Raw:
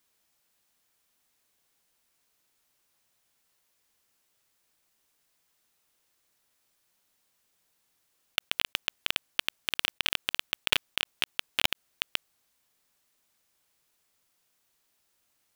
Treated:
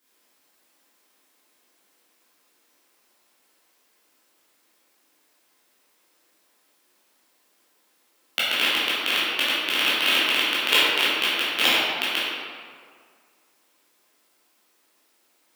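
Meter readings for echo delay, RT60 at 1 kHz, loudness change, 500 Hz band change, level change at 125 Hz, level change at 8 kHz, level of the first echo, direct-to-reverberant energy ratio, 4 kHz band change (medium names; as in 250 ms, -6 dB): no echo, 1.9 s, +9.5 dB, +13.5 dB, no reading, +7.5 dB, no echo, -10.5 dB, +9.0 dB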